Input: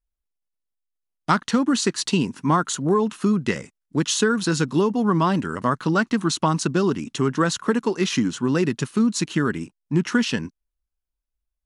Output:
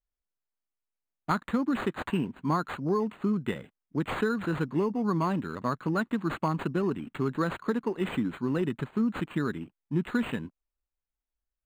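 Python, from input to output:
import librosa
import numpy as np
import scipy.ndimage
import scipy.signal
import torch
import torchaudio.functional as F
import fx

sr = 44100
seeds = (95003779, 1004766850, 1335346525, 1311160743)

y = np.interp(np.arange(len(x)), np.arange(len(x))[::8], x[::8])
y = F.gain(torch.from_numpy(y), -7.5).numpy()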